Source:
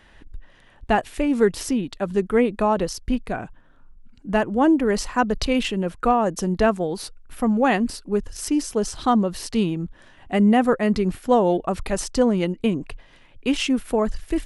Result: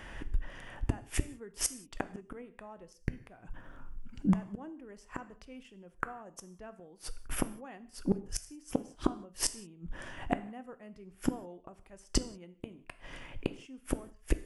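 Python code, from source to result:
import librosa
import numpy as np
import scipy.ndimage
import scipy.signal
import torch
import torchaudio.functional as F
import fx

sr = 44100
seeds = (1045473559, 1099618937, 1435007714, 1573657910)

y = fx.peak_eq(x, sr, hz=4000.0, db=-13.5, octaves=0.28)
y = fx.gate_flip(y, sr, shuts_db=-20.0, range_db=-35)
y = fx.rev_gated(y, sr, seeds[0], gate_ms=210, shape='falling', drr_db=11.5)
y = y * librosa.db_to_amplitude(6.0)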